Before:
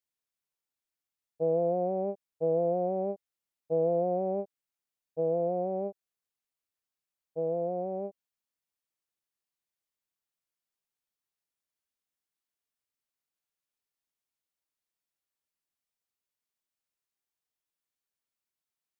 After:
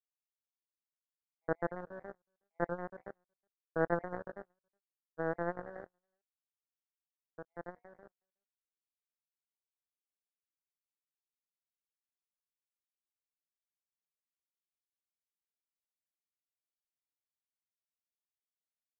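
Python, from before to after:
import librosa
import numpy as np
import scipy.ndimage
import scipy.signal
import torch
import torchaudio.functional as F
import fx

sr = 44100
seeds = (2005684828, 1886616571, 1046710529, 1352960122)

y = fx.spec_dropout(x, sr, seeds[0], share_pct=38)
y = fx.dmg_noise_colour(y, sr, seeds[1], colour='white', level_db=-69.0)
y = fx.air_absorb(y, sr, metres=140.0)
y = fx.doubler(y, sr, ms=23.0, db=-10.5)
y = y + 10.0 ** (-13.0 / 20.0) * np.pad(y, (int(368 * sr / 1000.0), 0))[:len(y)]
y = fx.power_curve(y, sr, exponent=3.0)
y = y * librosa.db_to_amplitude(3.0)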